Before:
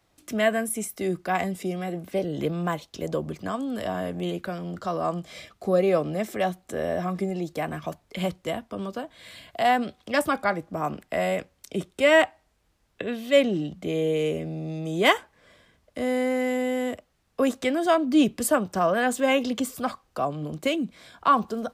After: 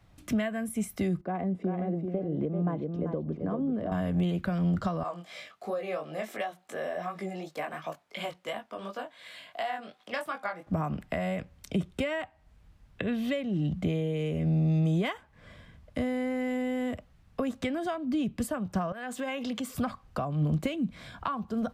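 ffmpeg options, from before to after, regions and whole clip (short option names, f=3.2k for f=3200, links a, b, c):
-filter_complex "[0:a]asettb=1/sr,asplit=3[a][b][c];[a]atrim=end=1.214[d];[b]atrim=start=1.21:end=3.92,asetpts=PTS-STARTPTS,afade=t=in:d=0.004:c=qsin,afade=t=out:st=2.706:d=0.004:c=qsin,bandpass=f=380:t=q:w=1.3,aecho=1:1:387:0.422,atrim=end_sample=119511[e];[c]atrim=start=3.916[f];[d][e]acrossfade=d=0.004:c1=hsin:c2=qsin[g];[g][f]acrossfade=d=0.004:c1=qsin:c2=hsin,asettb=1/sr,asplit=3[h][i][j];[h]atrim=end=5.034[k];[i]atrim=start=5.03:end=10.67,asetpts=PTS-STARTPTS,afade=t=in:d=0.004:c=qsin,afade=t=out:st=5.636:d=0.004:c=qsin,highpass=520,flanger=delay=18.5:depth=4.1:speed=2.8[l];[j]atrim=start=10.666[m];[k][l]acrossfade=d=0.004:c1=hsin:c2=qsin[n];[n][m]acrossfade=d=0.004:c1=qsin:c2=hsin,asettb=1/sr,asplit=3[o][p][q];[o]atrim=end=18.924[r];[p]atrim=start=18.92:end=19.75,asetpts=PTS-STARTPTS,afade=t=in:d=0.004:c=qsin,afade=t=out:st=0.826:d=0.004:c=qsin,highpass=f=460:p=1,acompressor=threshold=-34dB:ratio=3:attack=3.2:release=140:knee=1:detection=peak[s];[q]atrim=start=19.746[t];[r][s]acrossfade=d=0.004:c1=hsin:c2=qsin[u];[u][t]acrossfade=d=0.004:c1=qsin:c2=hsin,equalizer=f=370:t=o:w=1:g=-5,acompressor=threshold=-33dB:ratio=12,bass=f=250:g=11,treble=f=4k:g=-7,volume=3dB"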